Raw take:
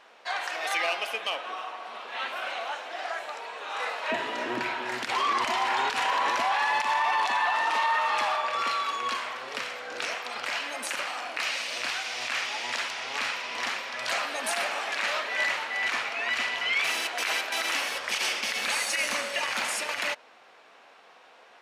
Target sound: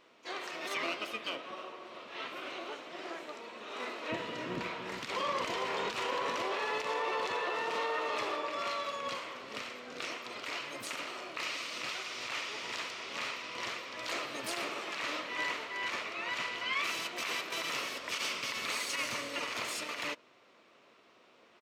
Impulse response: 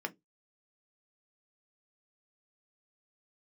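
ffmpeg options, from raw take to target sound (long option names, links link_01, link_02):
-filter_complex "[0:a]asplit=4[link_01][link_02][link_03][link_04];[link_02]asetrate=22050,aresample=44100,atempo=2,volume=-4dB[link_05];[link_03]asetrate=35002,aresample=44100,atempo=1.25992,volume=-10dB[link_06];[link_04]asetrate=66075,aresample=44100,atempo=0.66742,volume=-15dB[link_07];[link_01][link_05][link_06][link_07]amix=inputs=4:normalize=0,equalizer=frequency=800:width_type=o:width=0.33:gain=-10,equalizer=frequency=1600:width_type=o:width=0.33:gain=-7,equalizer=frequency=10000:width_type=o:width=0.33:gain=-6,volume=-7.5dB"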